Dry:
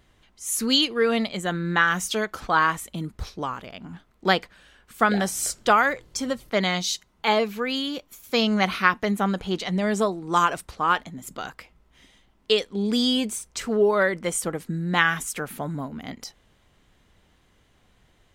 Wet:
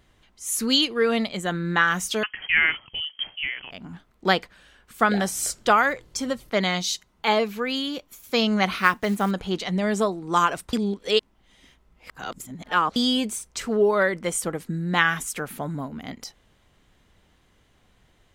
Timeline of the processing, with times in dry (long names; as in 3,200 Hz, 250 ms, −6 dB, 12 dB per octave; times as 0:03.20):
0:02.23–0:03.71: voice inversion scrambler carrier 3,200 Hz
0:08.77–0:09.31: log-companded quantiser 6 bits
0:10.73–0:12.96: reverse